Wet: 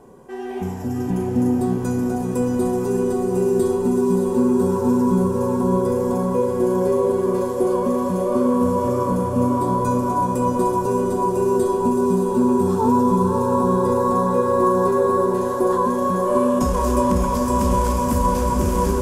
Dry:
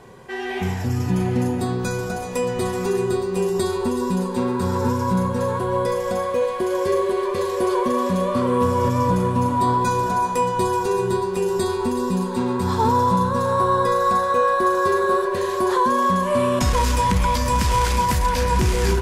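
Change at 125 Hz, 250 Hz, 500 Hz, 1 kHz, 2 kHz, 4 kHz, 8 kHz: -1.0 dB, +4.5 dB, +2.5 dB, -1.5 dB, -9.0 dB, no reading, -2.5 dB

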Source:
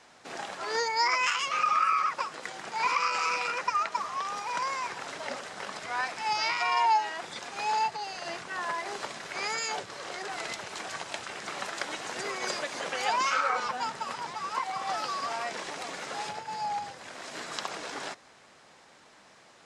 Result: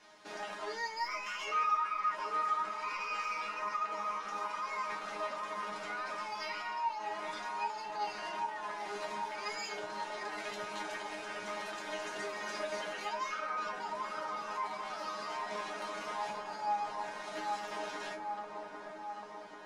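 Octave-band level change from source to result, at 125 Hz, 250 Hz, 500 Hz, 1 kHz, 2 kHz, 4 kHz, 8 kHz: no reading, -3.0 dB, -3.5 dB, -6.0 dB, -7.5 dB, -9.5 dB, -11.5 dB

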